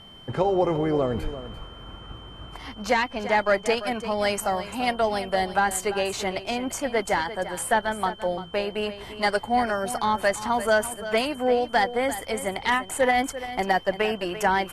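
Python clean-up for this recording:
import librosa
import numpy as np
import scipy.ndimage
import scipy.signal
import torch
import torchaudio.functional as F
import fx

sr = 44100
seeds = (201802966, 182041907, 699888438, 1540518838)

y = fx.notch(x, sr, hz=3100.0, q=30.0)
y = fx.fix_echo_inverse(y, sr, delay_ms=343, level_db=-13.0)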